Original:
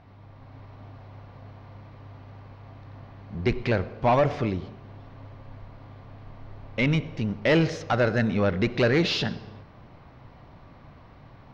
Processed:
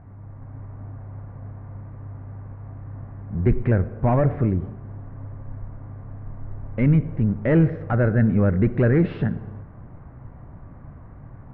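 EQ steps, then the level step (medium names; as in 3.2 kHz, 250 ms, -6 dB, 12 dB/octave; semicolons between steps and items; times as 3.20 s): Chebyshev low-pass 1.7 kHz, order 3; dynamic bell 940 Hz, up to -4 dB, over -38 dBFS, Q 0.97; bass shelf 260 Hz +10.5 dB; 0.0 dB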